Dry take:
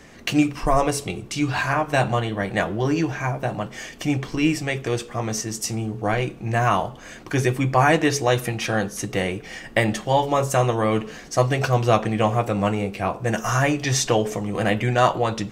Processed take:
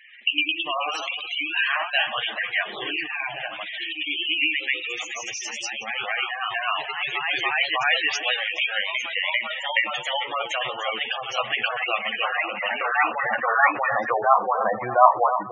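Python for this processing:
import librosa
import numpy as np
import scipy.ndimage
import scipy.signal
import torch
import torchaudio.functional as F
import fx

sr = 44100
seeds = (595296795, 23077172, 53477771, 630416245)

p1 = fx.filter_sweep_bandpass(x, sr, from_hz=2800.0, to_hz=1000.0, start_s=12.74, end_s=14.73, q=2.0)
p2 = fx.echo_pitch(p1, sr, ms=123, semitones=1, count=3, db_per_echo=-3.0)
p3 = p2 + fx.echo_split(p2, sr, split_hz=1700.0, low_ms=301, high_ms=429, feedback_pct=52, wet_db=-11.0, dry=0)
p4 = fx.spec_gate(p3, sr, threshold_db=-10, keep='strong')
y = F.gain(torch.from_numpy(p4), 8.0).numpy()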